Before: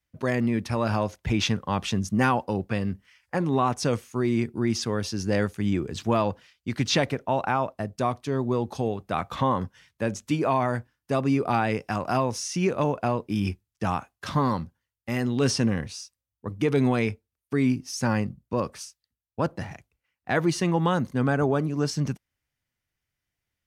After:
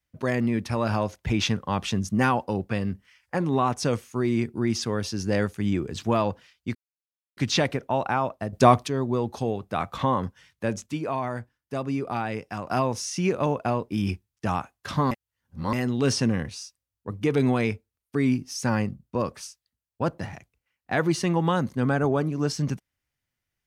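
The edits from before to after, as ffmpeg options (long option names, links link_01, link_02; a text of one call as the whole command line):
ffmpeg -i in.wav -filter_complex "[0:a]asplit=8[link_01][link_02][link_03][link_04][link_05][link_06][link_07][link_08];[link_01]atrim=end=6.75,asetpts=PTS-STARTPTS,afade=type=out:start_time=6.746:duration=0.004:curve=hsin,apad=pad_dur=0.62[link_09];[link_02]atrim=start=6.75:end=7.912,asetpts=PTS-STARTPTS,afade=type=in:duration=0.004:curve=hsin[link_10];[link_03]atrim=start=7.908:end=8.262,asetpts=PTS-STARTPTS,volume=10dB[link_11];[link_04]atrim=start=8.258:end=10.242[link_12];[link_05]atrim=start=10.238:end=12.092,asetpts=PTS-STARTPTS,volume=-5dB[link_13];[link_06]atrim=start=12.088:end=14.492[link_14];[link_07]atrim=start=14.488:end=15.112,asetpts=PTS-STARTPTS,areverse[link_15];[link_08]atrim=start=15.108[link_16];[link_09][link_10]concat=n=2:v=0:a=1[link_17];[link_17][link_11]acrossfade=duration=0.004:curve1=hsin:curve2=hsin[link_18];[link_18][link_12]acrossfade=duration=0.004:curve1=hsin:curve2=hsin[link_19];[link_19][link_13]acrossfade=duration=0.004:curve1=hsin:curve2=hsin[link_20];[link_20][link_14]acrossfade=duration=0.004:curve1=hsin:curve2=hsin[link_21];[link_21][link_15]acrossfade=duration=0.004:curve1=hsin:curve2=hsin[link_22];[link_22][link_16]acrossfade=duration=0.004:curve1=hsin:curve2=hsin" out.wav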